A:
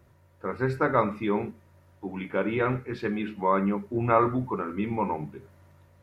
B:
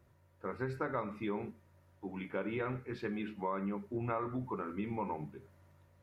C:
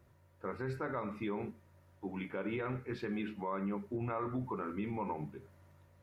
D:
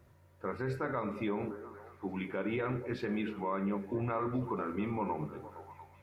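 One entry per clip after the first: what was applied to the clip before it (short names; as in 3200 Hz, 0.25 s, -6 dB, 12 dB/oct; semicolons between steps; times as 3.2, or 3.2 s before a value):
compressor 6:1, threshold -25 dBFS, peak gain reduction 9 dB; gain -7.5 dB
limiter -30 dBFS, peak gain reduction 6 dB; gain +1.5 dB
delay with a stepping band-pass 0.232 s, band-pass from 390 Hz, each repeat 0.7 oct, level -8.5 dB; gain +3 dB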